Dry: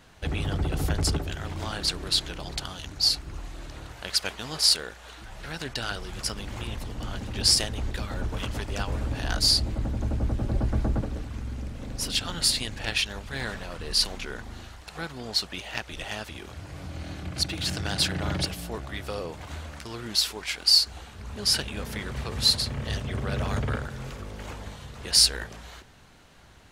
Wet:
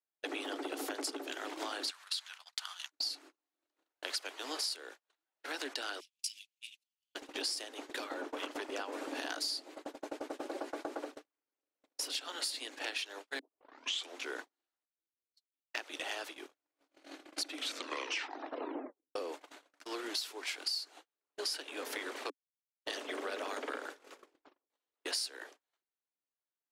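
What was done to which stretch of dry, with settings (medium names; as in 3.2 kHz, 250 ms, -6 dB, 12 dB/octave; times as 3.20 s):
1.90–2.91 s: inverse Chebyshev high-pass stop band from 230 Hz, stop band 70 dB
6.00–7.15 s: Chebyshev band-stop 170–2500 Hz, order 4
8.04–8.93 s: treble shelf 2.9 kHz -7 dB
9.61–12.53 s: high-pass 360 Hz
13.39 s: tape start 0.79 s
14.85–15.74 s: amplifier tone stack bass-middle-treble 10-0-1
17.46 s: tape stop 1.69 s
22.30–22.85 s: mute
24.22 s: tape stop 0.48 s
whole clip: steep high-pass 270 Hz 96 dB/octave; gate -40 dBFS, range -48 dB; compression 6:1, threshold -37 dBFS; trim +1 dB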